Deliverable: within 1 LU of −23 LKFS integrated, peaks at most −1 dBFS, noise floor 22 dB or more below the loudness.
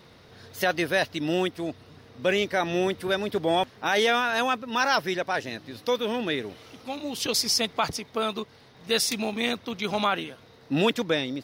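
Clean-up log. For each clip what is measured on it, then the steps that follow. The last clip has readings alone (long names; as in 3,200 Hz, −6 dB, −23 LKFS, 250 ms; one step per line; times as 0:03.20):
crackle rate 27 per second; integrated loudness −26.5 LKFS; sample peak −11.5 dBFS; target loudness −23.0 LKFS
→ click removal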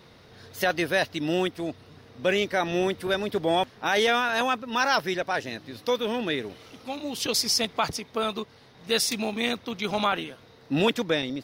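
crackle rate 0.087 per second; integrated loudness −26.5 LKFS; sample peak −11.5 dBFS; target loudness −23.0 LKFS
→ level +3.5 dB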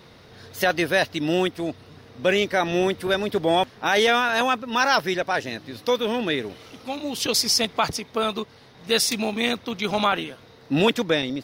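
integrated loudness −23.0 LKFS; sample peak −8.0 dBFS; background noise floor −50 dBFS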